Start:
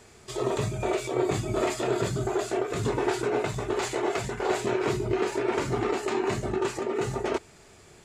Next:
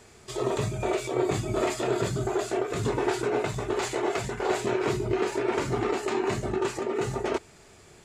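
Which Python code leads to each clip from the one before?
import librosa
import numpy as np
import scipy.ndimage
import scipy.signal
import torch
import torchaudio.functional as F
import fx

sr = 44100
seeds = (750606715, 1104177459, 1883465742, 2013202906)

y = x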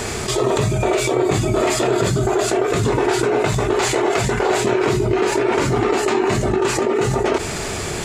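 y = fx.env_flatten(x, sr, amount_pct=70)
y = y * librosa.db_to_amplitude(6.5)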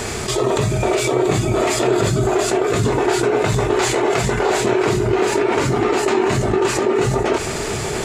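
y = x + 10.0 ** (-9.5 / 20.0) * np.pad(x, (int(686 * sr / 1000.0), 0))[:len(x)]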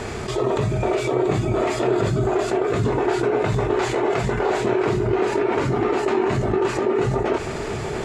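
y = fx.lowpass(x, sr, hz=2100.0, slope=6)
y = y * librosa.db_to_amplitude(-3.0)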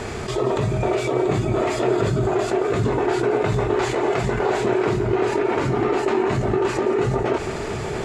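y = x + 10.0 ** (-14.5 / 20.0) * np.pad(x, (int(173 * sr / 1000.0), 0))[:len(x)]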